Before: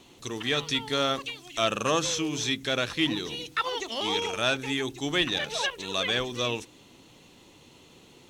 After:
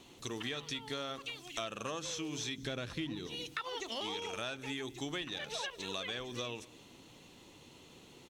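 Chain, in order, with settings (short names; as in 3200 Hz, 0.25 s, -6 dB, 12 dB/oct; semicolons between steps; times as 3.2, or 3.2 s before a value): 2.58–3.27 low shelf 330 Hz +10.5 dB; compressor 10:1, threshold -33 dBFS, peak gain reduction 16 dB; echo 0.198 s -22 dB; gain -3 dB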